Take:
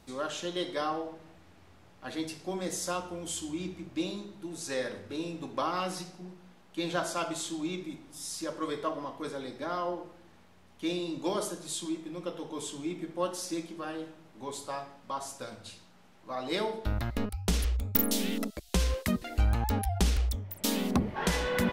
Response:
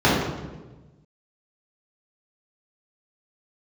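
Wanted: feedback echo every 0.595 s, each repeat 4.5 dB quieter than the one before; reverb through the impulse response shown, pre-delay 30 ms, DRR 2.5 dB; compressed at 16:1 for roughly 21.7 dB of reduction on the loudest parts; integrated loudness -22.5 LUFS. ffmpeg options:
-filter_complex "[0:a]acompressor=threshold=-43dB:ratio=16,aecho=1:1:595|1190|1785|2380|2975|3570|4165|4760|5355:0.596|0.357|0.214|0.129|0.0772|0.0463|0.0278|0.0167|0.01,asplit=2[a][b];[1:a]atrim=start_sample=2205,adelay=30[c];[b][c]afir=irnorm=-1:irlink=0,volume=-25.5dB[d];[a][d]amix=inputs=2:normalize=0,volume=19.5dB"

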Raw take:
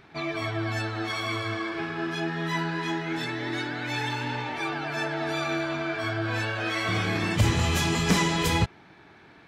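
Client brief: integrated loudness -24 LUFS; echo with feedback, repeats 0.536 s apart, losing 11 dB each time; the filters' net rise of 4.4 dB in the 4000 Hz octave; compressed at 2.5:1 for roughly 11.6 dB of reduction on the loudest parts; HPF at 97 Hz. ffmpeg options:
-af "highpass=97,equalizer=f=4k:t=o:g=5.5,acompressor=threshold=-36dB:ratio=2.5,aecho=1:1:536|1072|1608:0.282|0.0789|0.0221,volume=10.5dB"

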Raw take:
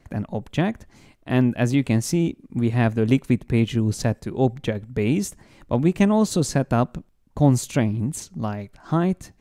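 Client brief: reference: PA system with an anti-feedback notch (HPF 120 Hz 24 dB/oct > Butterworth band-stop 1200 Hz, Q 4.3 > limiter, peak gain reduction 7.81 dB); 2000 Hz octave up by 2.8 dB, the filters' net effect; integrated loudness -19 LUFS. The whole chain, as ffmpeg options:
-af "highpass=f=120:w=0.5412,highpass=f=120:w=1.3066,asuperstop=centerf=1200:order=8:qfactor=4.3,equalizer=f=2k:t=o:g=3.5,volume=6dB,alimiter=limit=-6dB:level=0:latency=1"

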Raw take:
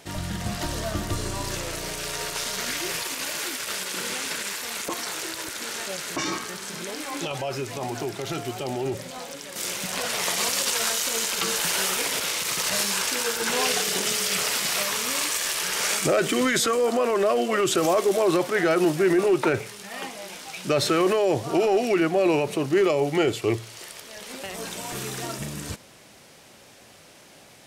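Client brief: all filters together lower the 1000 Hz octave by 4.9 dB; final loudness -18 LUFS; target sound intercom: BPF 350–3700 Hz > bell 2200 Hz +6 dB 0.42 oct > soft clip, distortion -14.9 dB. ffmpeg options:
-af "highpass=350,lowpass=3.7k,equalizer=f=1k:t=o:g=-7,equalizer=f=2.2k:t=o:w=0.42:g=6,asoftclip=threshold=-21dB,volume=12dB"

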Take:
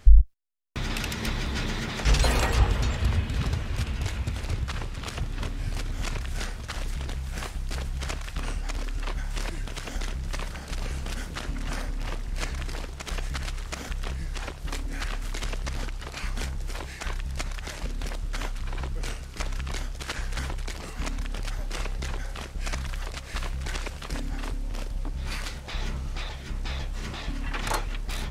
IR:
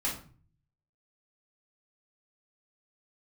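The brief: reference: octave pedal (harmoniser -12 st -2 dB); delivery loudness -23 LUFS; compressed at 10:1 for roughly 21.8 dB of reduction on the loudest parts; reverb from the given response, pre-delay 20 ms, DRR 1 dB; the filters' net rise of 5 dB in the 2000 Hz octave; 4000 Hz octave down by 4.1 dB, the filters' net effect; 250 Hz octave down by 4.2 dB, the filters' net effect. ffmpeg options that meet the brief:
-filter_complex "[0:a]equalizer=f=250:t=o:g=-6,equalizer=f=2k:t=o:g=8.5,equalizer=f=4k:t=o:g=-9,acompressor=threshold=-30dB:ratio=10,asplit=2[a][b];[1:a]atrim=start_sample=2205,adelay=20[c];[b][c]afir=irnorm=-1:irlink=0,volume=-7dB[d];[a][d]amix=inputs=2:normalize=0,asplit=2[e][f];[f]asetrate=22050,aresample=44100,atempo=2,volume=-2dB[g];[e][g]amix=inputs=2:normalize=0,volume=9.5dB"

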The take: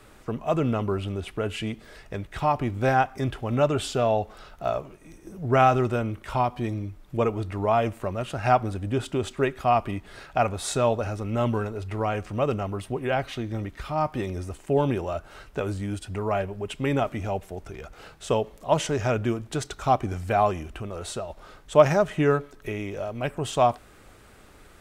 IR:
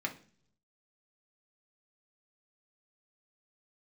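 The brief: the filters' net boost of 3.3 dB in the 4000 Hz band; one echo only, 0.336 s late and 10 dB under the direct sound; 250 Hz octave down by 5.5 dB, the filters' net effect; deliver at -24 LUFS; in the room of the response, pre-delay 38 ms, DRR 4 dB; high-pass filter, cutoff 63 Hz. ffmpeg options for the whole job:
-filter_complex "[0:a]highpass=63,equalizer=f=250:t=o:g=-7.5,equalizer=f=4k:t=o:g=4.5,aecho=1:1:336:0.316,asplit=2[a][b];[1:a]atrim=start_sample=2205,adelay=38[c];[b][c]afir=irnorm=-1:irlink=0,volume=-7.5dB[d];[a][d]amix=inputs=2:normalize=0,volume=2dB"

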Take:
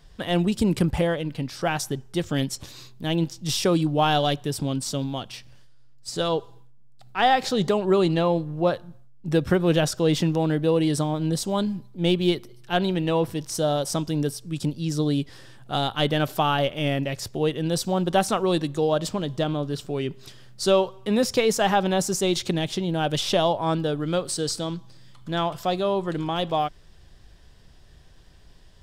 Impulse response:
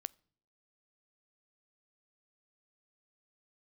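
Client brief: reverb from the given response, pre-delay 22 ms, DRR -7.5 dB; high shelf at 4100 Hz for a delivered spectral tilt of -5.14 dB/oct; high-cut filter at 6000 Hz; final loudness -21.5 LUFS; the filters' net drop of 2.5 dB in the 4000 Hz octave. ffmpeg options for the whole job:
-filter_complex "[0:a]lowpass=6k,equalizer=f=4k:t=o:g=-5.5,highshelf=f=4.1k:g=5,asplit=2[a][b];[1:a]atrim=start_sample=2205,adelay=22[c];[b][c]afir=irnorm=-1:irlink=0,volume=10.5dB[d];[a][d]amix=inputs=2:normalize=0,volume=-5dB"

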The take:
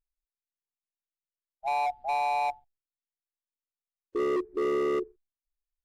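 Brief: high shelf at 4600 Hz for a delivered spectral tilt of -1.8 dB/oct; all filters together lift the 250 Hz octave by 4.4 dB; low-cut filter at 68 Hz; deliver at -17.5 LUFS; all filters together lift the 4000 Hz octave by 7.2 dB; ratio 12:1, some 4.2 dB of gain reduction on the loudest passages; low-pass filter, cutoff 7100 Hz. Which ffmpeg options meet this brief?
-af "highpass=68,lowpass=7.1k,equalizer=f=250:t=o:g=8,equalizer=f=4k:t=o:g=7,highshelf=f=4.6k:g=3,acompressor=threshold=-26dB:ratio=12,volume=13dB"

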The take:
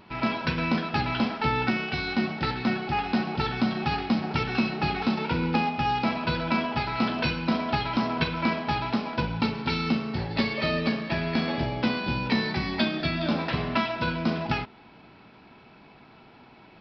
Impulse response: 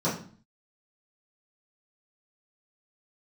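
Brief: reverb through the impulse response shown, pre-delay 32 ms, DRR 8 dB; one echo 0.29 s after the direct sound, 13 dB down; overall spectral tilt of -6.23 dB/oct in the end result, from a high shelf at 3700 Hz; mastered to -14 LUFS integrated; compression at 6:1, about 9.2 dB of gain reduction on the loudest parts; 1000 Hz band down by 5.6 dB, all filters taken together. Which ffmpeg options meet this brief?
-filter_complex "[0:a]equalizer=f=1k:t=o:g=-6.5,highshelf=f=3.7k:g=-9,acompressor=threshold=-31dB:ratio=6,aecho=1:1:290:0.224,asplit=2[a][b];[1:a]atrim=start_sample=2205,adelay=32[c];[b][c]afir=irnorm=-1:irlink=0,volume=-19.5dB[d];[a][d]amix=inputs=2:normalize=0,volume=17dB"

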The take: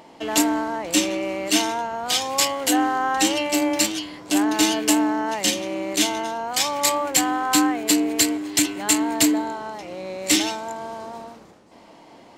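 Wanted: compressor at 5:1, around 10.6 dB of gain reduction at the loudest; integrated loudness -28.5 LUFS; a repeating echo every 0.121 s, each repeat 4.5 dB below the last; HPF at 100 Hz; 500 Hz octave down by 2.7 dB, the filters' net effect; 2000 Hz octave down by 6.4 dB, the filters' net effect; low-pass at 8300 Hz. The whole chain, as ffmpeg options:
-af "highpass=100,lowpass=8.3k,equalizer=f=500:t=o:g=-3,equalizer=f=2k:t=o:g=-8.5,acompressor=threshold=-28dB:ratio=5,aecho=1:1:121|242|363|484|605|726|847|968|1089:0.596|0.357|0.214|0.129|0.0772|0.0463|0.0278|0.0167|0.01,volume=1dB"

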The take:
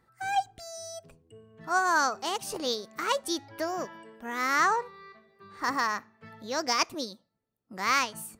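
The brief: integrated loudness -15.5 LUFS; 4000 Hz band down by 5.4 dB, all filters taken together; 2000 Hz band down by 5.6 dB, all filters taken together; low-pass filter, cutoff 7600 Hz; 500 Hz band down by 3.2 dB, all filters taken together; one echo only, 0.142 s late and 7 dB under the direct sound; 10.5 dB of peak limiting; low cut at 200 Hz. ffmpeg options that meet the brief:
-af "highpass=200,lowpass=7.6k,equalizer=f=500:t=o:g=-3.5,equalizer=f=2k:t=o:g=-6.5,equalizer=f=4k:t=o:g=-5,alimiter=level_in=3dB:limit=-24dB:level=0:latency=1,volume=-3dB,aecho=1:1:142:0.447,volume=22dB"

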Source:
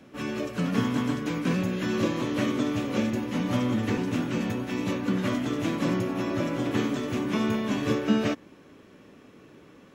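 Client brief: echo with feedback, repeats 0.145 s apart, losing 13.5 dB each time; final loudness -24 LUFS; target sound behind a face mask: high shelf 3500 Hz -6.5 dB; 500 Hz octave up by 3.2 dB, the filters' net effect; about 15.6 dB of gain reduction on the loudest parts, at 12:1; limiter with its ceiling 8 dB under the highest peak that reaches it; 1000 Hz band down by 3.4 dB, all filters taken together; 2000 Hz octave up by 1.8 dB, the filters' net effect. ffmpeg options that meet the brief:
-af "equalizer=f=500:t=o:g=5.5,equalizer=f=1k:t=o:g=-7,equalizer=f=2k:t=o:g=6,acompressor=threshold=-34dB:ratio=12,alimiter=level_in=8.5dB:limit=-24dB:level=0:latency=1,volume=-8.5dB,highshelf=f=3.5k:g=-6.5,aecho=1:1:145|290:0.211|0.0444,volume=17.5dB"

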